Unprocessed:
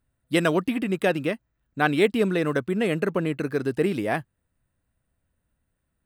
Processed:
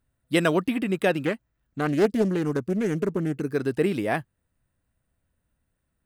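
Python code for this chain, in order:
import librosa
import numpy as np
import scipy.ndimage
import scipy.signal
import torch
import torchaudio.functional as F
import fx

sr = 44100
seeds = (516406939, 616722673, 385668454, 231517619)

y = fx.spec_box(x, sr, start_s=1.8, length_s=1.75, low_hz=460.0, high_hz=4600.0, gain_db=-8)
y = fx.doppler_dist(y, sr, depth_ms=0.28, at=(1.25, 3.41))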